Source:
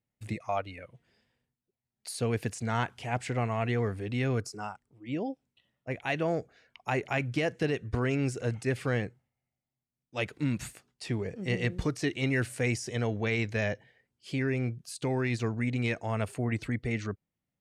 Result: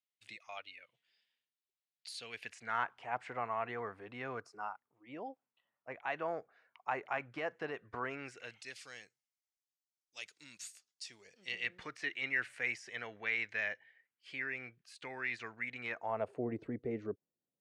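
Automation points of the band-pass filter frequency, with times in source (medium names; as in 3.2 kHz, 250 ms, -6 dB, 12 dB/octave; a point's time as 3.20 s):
band-pass filter, Q 1.7
2.29 s 3.4 kHz
2.89 s 1.1 kHz
8.07 s 1.1 kHz
8.83 s 5.9 kHz
11.23 s 5.9 kHz
11.78 s 1.9 kHz
15.73 s 1.9 kHz
16.42 s 430 Hz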